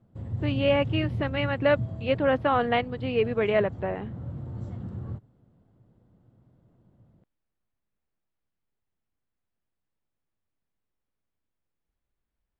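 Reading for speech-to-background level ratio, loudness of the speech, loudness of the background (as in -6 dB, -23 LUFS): 9.0 dB, -26.5 LUFS, -35.5 LUFS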